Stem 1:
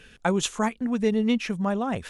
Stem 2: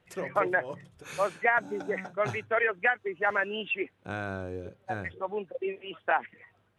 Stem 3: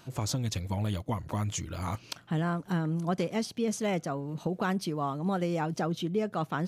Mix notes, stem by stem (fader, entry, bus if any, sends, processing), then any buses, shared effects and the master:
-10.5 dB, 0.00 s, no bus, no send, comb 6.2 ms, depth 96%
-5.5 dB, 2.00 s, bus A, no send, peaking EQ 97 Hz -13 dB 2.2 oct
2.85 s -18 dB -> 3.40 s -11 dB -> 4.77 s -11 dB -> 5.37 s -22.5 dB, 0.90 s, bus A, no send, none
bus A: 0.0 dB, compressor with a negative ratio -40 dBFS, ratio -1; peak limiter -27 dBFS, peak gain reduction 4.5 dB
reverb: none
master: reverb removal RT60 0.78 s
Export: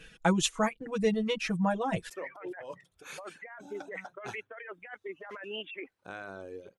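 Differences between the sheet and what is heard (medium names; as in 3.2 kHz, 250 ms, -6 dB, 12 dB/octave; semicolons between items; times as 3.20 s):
stem 1 -10.5 dB -> -4.0 dB; stem 3: muted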